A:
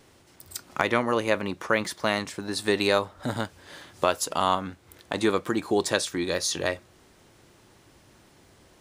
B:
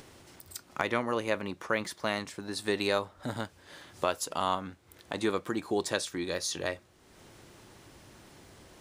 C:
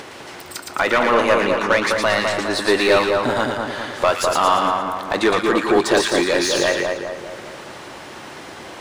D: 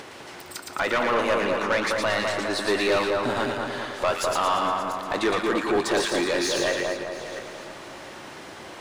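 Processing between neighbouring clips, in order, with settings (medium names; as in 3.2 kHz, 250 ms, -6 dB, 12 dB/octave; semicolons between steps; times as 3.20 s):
upward compressor, threshold -38 dBFS; trim -6 dB
overdrive pedal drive 23 dB, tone 2.1 kHz, clips at -10 dBFS; two-band feedback delay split 1.5 kHz, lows 205 ms, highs 114 ms, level -3 dB; trim +5 dB
backward echo that repeats 352 ms, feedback 53%, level -14 dB; saturation -10.5 dBFS, distortion -17 dB; trim -5 dB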